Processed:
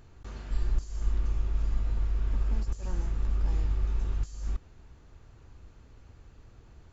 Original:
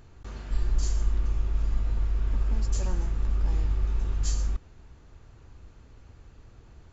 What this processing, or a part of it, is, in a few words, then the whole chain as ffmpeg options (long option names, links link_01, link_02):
de-esser from a sidechain: -filter_complex "[0:a]asplit=2[link_01][link_02];[link_02]highpass=6700,apad=whole_len=305253[link_03];[link_01][link_03]sidechaincompress=threshold=-55dB:ratio=12:attack=2.2:release=39,volume=-2dB"